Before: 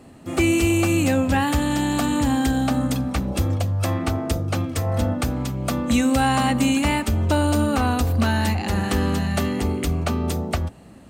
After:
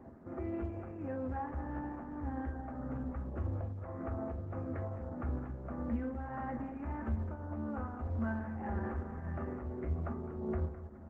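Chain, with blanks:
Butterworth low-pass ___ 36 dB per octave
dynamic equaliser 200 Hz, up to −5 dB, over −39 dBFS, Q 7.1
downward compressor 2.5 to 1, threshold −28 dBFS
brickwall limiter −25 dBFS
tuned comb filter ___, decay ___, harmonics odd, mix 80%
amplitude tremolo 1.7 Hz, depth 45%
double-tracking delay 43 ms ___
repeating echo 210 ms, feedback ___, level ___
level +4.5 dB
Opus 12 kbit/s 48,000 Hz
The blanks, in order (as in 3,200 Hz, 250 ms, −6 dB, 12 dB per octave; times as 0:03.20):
1,700 Hz, 74 Hz, 0.29 s, −13 dB, 37%, −12 dB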